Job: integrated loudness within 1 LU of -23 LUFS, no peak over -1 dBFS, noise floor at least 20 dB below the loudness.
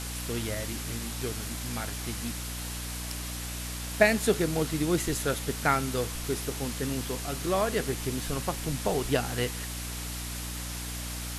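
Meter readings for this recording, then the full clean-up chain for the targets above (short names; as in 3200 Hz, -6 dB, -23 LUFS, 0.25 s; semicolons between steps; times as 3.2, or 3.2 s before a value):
hum 60 Hz; harmonics up to 300 Hz; hum level -36 dBFS; noise floor -36 dBFS; noise floor target -51 dBFS; loudness -30.5 LUFS; peak -7.0 dBFS; loudness target -23.0 LUFS
-> de-hum 60 Hz, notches 5; denoiser 15 dB, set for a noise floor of -36 dBFS; gain +7.5 dB; limiter -1 dBFS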